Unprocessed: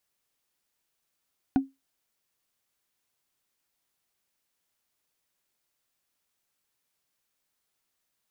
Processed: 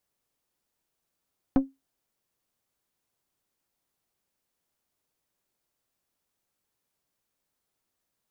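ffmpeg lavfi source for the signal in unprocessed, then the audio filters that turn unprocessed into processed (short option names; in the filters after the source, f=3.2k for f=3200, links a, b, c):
-f lavfi -i "aevalsrc='0.178*pow(10,-3*t/0.2)*sin(2*PI*270*t)+0.0631*pow(10,-3*t/0.059)*sin(2*PI*744.4*t)+0.0224*pow(10,-3*t/0.026)*sin(2*PI*1459.1*t)+0.00794*pow(10,-3*t/0.014)*sin(2*PI*2411.9*t)+0.00282*pow(10,-3*t/0.009)*sin(2*PI*3601.8*t)':d=0.45:s=44100"
-filter_complex "[0:a]asplit=2[a][b];[b]adynamicsmooth=sensitivity=6.5:basefreq=1.4k,volume=1dB[c];[a][c]amix=inputs=2:normalize=0,aeval=exprs='(tanh(5.62*val(0)+0.6)-tanh(0.6))/5.62':c=same"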